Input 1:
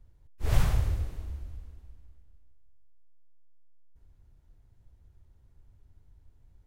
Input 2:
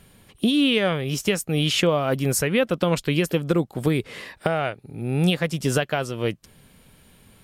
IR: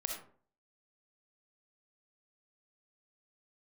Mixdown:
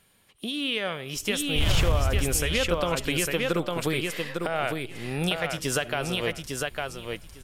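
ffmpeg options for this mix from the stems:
-filter_complex "[0:a]volume=19dB,asoftclip=hard,volume=-19dB,adelay=1150,volume=1.5dB[a];[1:a]lowshelf=f=460:g=-11,volume=-7.5dB,asplit=3[b][c][d];[c]volume=-14.5dB[e];[d]volume=-3.5dB[f];[2:a]atrim=start_sample=2205[g];[e][g]afir=irnorm=-1:irlink=0[h];[f]aecho=0:1:853|1706|2559:1|0.15|0.0225[i];[a][b][h][i]amix=inputs=4:normalize=0,dynaudnorm=f=480:g=5:m=7dB,alimiter=limit=-13dB:level=0:latency=1:release=141"

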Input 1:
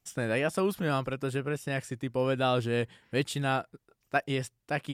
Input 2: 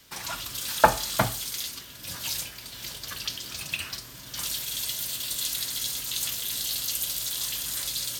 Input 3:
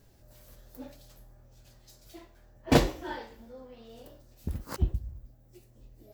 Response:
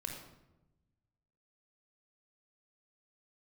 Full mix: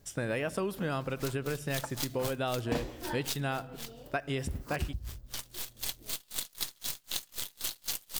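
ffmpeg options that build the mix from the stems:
-filter_complex "[0:a]volume=-0.5dB,asplit=2[a][b];[b]volume=-14.5dB[c];[1:a]acrusher=bits=5:dc=4:mix=0:aa=0.000001,aeval=exprs='val(0)*pow(10,-36*(0.5-0.5*cos(2*PI*3.9*n/s))/20)':c=same,adelay=1000,volume=2.5dB,asplit=3[d][e][f];[d]atrim=end=3.93,asetpts=PTS-STARTPTS,afade=t=out:st=3.926:d=0.004:c=hsin[g];[e]atrim=start=3.93:end=4.77,asetpts=PTS-STARTPTS,volume=0[h];[f]atrim=start=4.77,asetpts=PTS-STARTPTS,afade=t=in:d=0.004:c=hsin[i];[g][h][i]concat=n=3:v=0:a=1[j];[2:a]volume=-1dB[k];[3:a]atrim=start_sample=2205[l];[c][l]afir=irnorm=-1:irlink=0[m];[a][j][k][m]amix=inputs=4:normalize=0,acompressor=threshold=-29dB:ratio=6"

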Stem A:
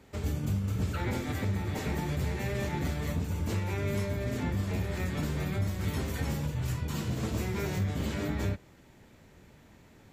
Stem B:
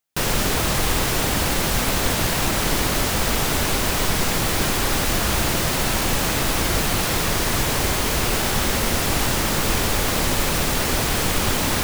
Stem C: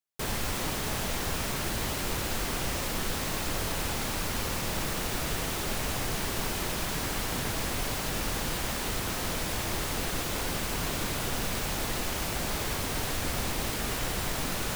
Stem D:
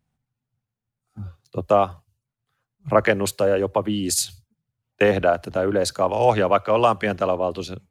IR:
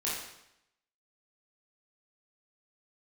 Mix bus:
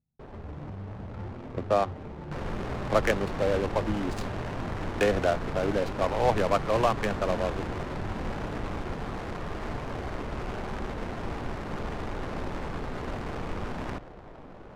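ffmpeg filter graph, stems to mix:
-filter_complex "[0:a]alimiter=level_in=5.5dB:limit=-24dB:level=0:latency=1,volume=-5.5dB,adelay=200,volume=-5.5dB,asplit=2[a][b];[b]volume=-11.5dB[c];[1:a]adelay=2150,volume=-15.5dB,asplit=2[d][e];[e]volume=-5dB[f];[2:a]acrossover=split=310[g][h];[g]acompressor=threshold=-39dB:ratio=6[i];[i][h]amix=inputs=2:normalize=0,volume=-7.5dB[j];[3:a]volume=-7dB[k];[4:a]atrim=start_sample=2205[l];[c][f]amix=inputs=2:normalize=0[m];[m][l]afir=irnorm=-1:irlink=0[n];[a][d][j][k][n]amix=inputs=5:normalize=0,adynamicsmooth=sensitivity=3:basefreq=520"

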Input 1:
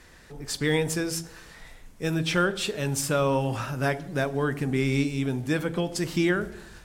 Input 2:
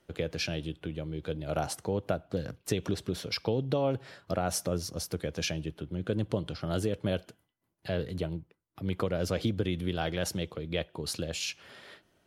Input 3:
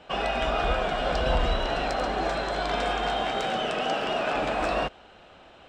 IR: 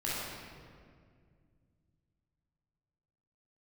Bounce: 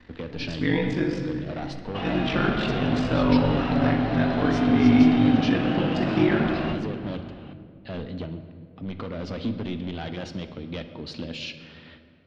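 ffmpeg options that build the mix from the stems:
-filter_complex "[0:a]aeval=exprs='val(0)*sin(2*PI*24*n/s)':c=same,volume=-2dB,asplit=2[a][b];[b]volume=-6.5dB[c];[1:a]asoftclip=type=hard:threshold=-28dB,adynamicequalizer=threshold=0.00398:dfrequency=2300:dqfactor=0.7:tfrequency=2300:tqfactor=0.7:attack=5:release=100:ratio=0.375:range=2.5:mode=boostabove:tftype=highshelf,volume=-2.5dB,asplit=2[d][e];[e]volume=-14dB[f];[2:a]asoftclip=type=tanh:threshold=-30dB,adelay=1850,volume=-0.5dB,asplit=2[g][h];[h]volume=-14dB[i];[3:a]atrim=start_sample=2205[j];[c][f][i]amix=inputs=3:normalize=0[k];[k][j]afir=irnorm=-1:irlink=0[l];[a][d][g][l]amix=inputs=4:normalize=0,lowpass=f=4.1k:w=0.5412,lowpass=f=4.1k:w=1.3066,equalizer=f=250:w=3.8:g=13.5"

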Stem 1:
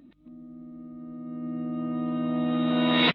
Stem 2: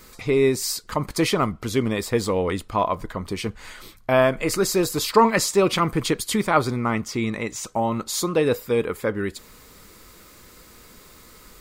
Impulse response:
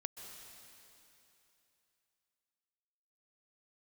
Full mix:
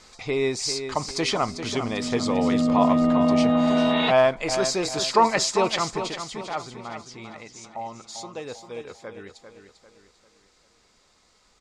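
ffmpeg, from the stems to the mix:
-filter_complex "[0:a]dynaudnorm=f=330:g=5:m=14dB,aecho=1:1:4.7:0.65,adelay=1000,volume=-6.5dB[a];[1:a]highshelf=f=2.5k:g=11.5,volume=-7.5dB,afade=t=out:st=5.62:d=0.56:silence=0.281838,asplit=2[b][c];[c]volume=-9dB,aecho=0:1:396|792|1188|1584|1980|2376:1|0.42|0.176|0.0741|0.0311|0.0131[d];[a][b][d]amix=inputs=3:normalize=0,lowpass=f=6.7k:w=0.5412,lowpass=f=6.7k:w=1.3066,equalizer=f=750:w=2.1:g=10.5"

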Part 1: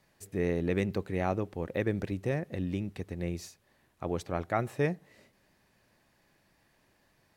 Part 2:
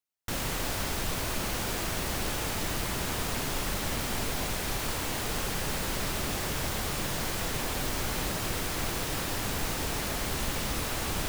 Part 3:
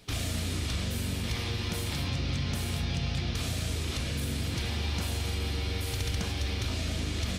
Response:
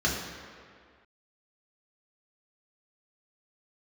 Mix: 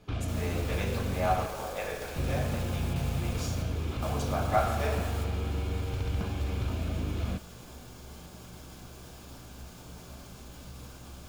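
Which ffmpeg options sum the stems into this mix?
-filter_complex "[0:a]highpass=f=630:w=0.5412,highpass=f=630:w=1.3066,volume=3dB,asplit=3[a][b][c];[b]volume=-9dB[d];[1:a]alimiter=level_in=4dB:limit=-24dB:level=0:latency=1:release=109,volume=-4dB,volume=-5.5dB,asplit=2[e][f];[f]volume=-18dB[g];[2:a]lowpass=1.8k,volume=0.5dB,asplit=3[h][i][j];[h]atrim=end=1.46,asetpts=PTS-STARTPTS,afade=t=out:st=1.456:d=0.004:c=hsin[k];[i]atrim=start=1.46:end=2.16,asetpts=PTS-STARTPTS,volume=0[l];[j]atrim=start=2.16,asetpts=PTS-STARTPTS,afade=t=in:d=0.004:c=hsin[m];[k][l][m]concat=n=3:v=0:a=1[n];[c]apad=whole_len=497741[o];[e][o]sidechaingate=range=-7dB:threshold=-59dB:ratio=16:detection=peak[p];[3:a]atrim=start_sample=2205[q];[d][g]amix=inputs=2:normalize=0[r];[r][q]afir=irnorm=-1:irlink=0[s];[a][p][n][s]amix=inputs=4:normalize=0,equalizer=f=1.9k:w=7.2:g=-12"

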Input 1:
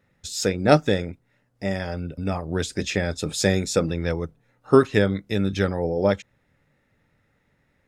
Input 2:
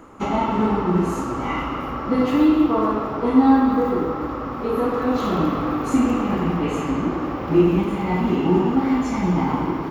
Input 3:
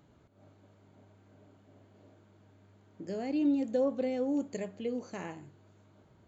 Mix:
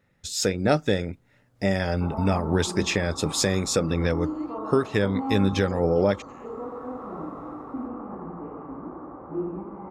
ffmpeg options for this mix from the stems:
-filter_complex "[0:a]volume=-1dB[a];[1:a]lowpass=f=1.2k:w=0.5412,lowpass=f=1.2k:w=1.3066,lowshelf=f=270:g=-9.5,adelay=1800,volume=-10.5dB[b];[2:a]equalizer=f=390:w=0.45:g=-13.5,acompressor=threshold=-43dB:ratio=6,adelay=1150,volume=-11dB[c];[a][c]amix=inputs=2:normalize=0,dynaudnorm=f=100:g=7:m=6dB,alimiter=limit=-10dB:level=0:latency=1:release=272,volume=0dB[d];[b][d]amix=inputs=2:normalize=0"

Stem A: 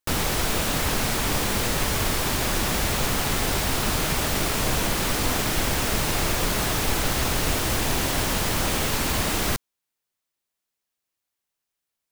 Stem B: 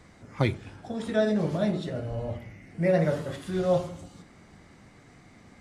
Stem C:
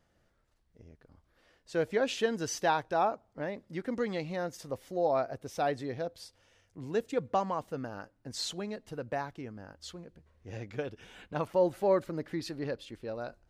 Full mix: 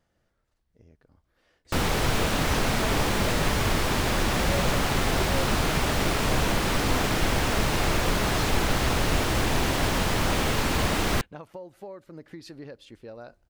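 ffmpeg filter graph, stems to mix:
-filter_complex "[0:a]lowpass=f=3.6k:p=1,adelay=1650,volume=1dB[a];[1:a]asplit=2[b][c];[c]afreqshift=0.79[d];[b][d]amix=inputs=2:normalize=1,adelay=1650,volume=-8dB[e];[2:a]acompressor=threshold=-36dB:ratio=12,volume=-1.5dB[f];[a][e][f]amix=inputs=3:normalize=0"

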